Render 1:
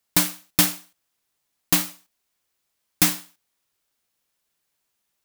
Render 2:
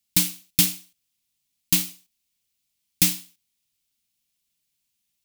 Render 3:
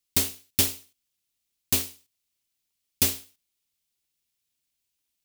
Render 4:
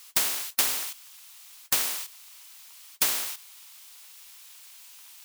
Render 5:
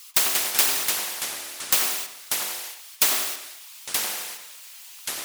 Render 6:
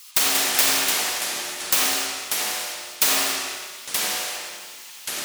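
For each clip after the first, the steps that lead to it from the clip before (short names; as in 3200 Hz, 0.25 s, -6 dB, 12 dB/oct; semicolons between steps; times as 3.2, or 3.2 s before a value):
band shelf 790 Hz -13.5 dB 2.7 oct
cycle switcher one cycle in 2, inverted; gain -3.5 dB
resonant high-pass 990 Hz, resonance Q 1.8; spectral compressor 4:1
formant sharpening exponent 1.5; echoes that change speed 0.142 s, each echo -4 st, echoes 3, each echo -6 dB; darkening echo 92 ms, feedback 32%, low-pass 1500 Hz, level -3 dB; gain +4 dB
reverb RT60 1.7 s, pre-delay 30 ms, DRR -3 dB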